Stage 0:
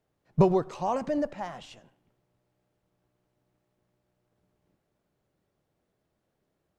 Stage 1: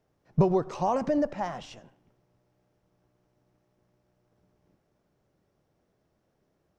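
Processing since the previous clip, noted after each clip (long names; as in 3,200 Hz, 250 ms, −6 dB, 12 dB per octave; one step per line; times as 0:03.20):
parametric band 5,600 Hz +7.5 dB 0.4 octaves
downward compressor 2 to 1, threshold −28 dBFS, peak gain reduction 7.5 dB
high-shelf EQ 2,800 Hz −8 dB
level +5 dB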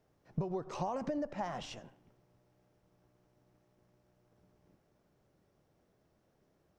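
downward compressor 10 to 1, threshold −33 dBFS, peak gain reduction 16.5 dB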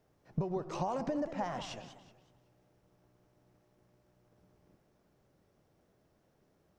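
feedback echo with a swinging delay time 187 ms, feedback 35%, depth 220 cents, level −12 dB
level +1.5 dB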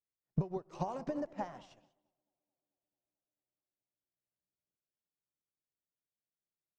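tape delay 219 ms, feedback 88%, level −15.5 dB, low-pass 1,400 Hz
expander for the loud parts 2.5 to 1, over −55 dBFS
level +3.5 dB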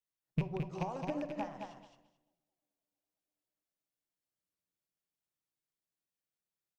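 loose part that buzzes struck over −40 dBFS, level −32 dBFS
repeating echo 217 ms, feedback 16%, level −5.5 dB
rectangular room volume 830 cubic metres, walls furnished, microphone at 0.61 metres
level −1.5 dB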